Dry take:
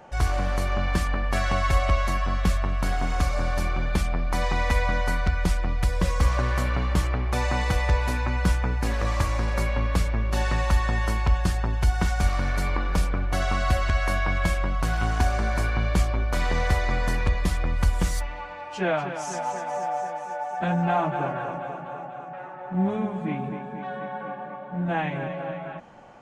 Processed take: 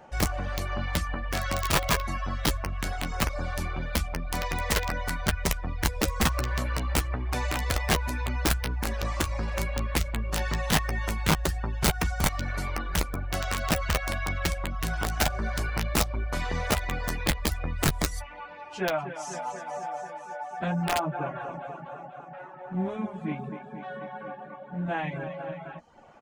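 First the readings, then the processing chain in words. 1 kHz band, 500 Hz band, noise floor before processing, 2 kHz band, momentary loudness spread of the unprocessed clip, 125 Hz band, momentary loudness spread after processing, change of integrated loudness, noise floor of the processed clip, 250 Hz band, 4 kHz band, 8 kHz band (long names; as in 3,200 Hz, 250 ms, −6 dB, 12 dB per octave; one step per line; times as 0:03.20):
−4.0 dB, −3.5 dB, −38 dBFS, −2.0 dB, 10 LU, −5.5 dB, 12 LU, −3.5 dB, −44 dBFS, −3.0 dB, +3.5 dB, +5.0 dB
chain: wrap-around overflow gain 14 dB
reverb reduction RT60 0.64 s
double-tracking delay 13 ms −10 dB
level −3 dB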